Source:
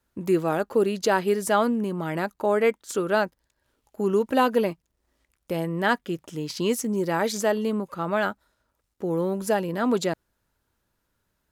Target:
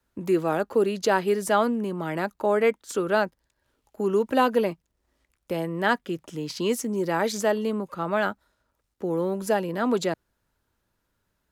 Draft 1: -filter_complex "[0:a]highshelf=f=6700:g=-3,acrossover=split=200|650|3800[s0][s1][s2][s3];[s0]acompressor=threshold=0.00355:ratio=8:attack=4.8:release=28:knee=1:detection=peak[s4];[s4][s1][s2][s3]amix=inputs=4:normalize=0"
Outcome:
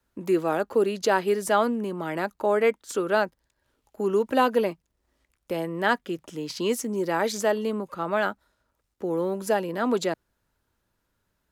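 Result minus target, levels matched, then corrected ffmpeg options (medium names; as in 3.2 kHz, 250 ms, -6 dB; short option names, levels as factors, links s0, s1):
compression: peak gain reduction +8.5 dB
-filter_complex "[0:a]highshelf=f=6700:g=-3,acrossover=split=200|650|3800[s0][s1][s2][s3];[s0]acompressor=threshold=0.0112:ratio=8:attack=4.8:release=28:knee=1:detection=peak[s4];[s4][s1][s2][s3]amix=inputs=4:normalize=0"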